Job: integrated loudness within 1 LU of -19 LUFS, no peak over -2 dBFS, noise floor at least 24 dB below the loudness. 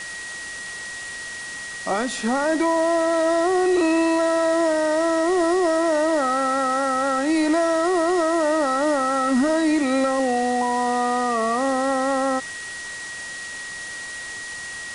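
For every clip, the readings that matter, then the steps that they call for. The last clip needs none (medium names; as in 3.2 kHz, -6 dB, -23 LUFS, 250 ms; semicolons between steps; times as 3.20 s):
steady tone 1.9 kHz; tone level -32 dBFS; noise floor -34 dBFS; noise floor target -46 dBFS; loudness -22.0 LUFS; peak level -11.5 dBFS; loudness target -19.0 LUFS
-> band-stop 1.9 kHz, Q 30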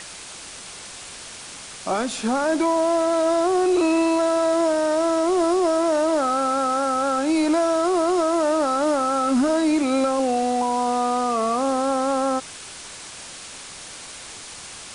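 steady tone not found; noise floor -39 dBFS; noise floor target -45 dBFS
-> noise reduction 6 dB, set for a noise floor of -39 dBFS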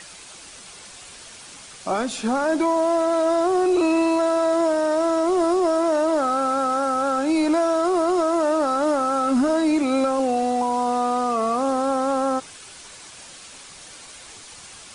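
noise floor -43 dBFS; noise floor target -45 dBFS
-> noise reduction 6 dB, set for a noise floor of -43 dBFS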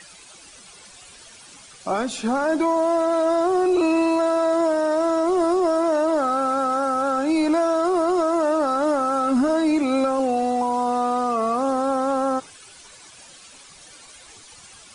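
noise floor -46 dBFS; loudness -21.0 LUFS; peak level -13.0 dBFS; loudness target -19.0 LUFS
-> trim +2 dB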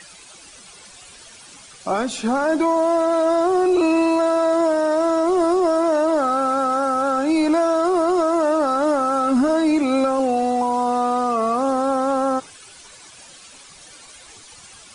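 loudness -19.0 LUFS; peak level -11.0 dBFS; noise floor -44 dBFS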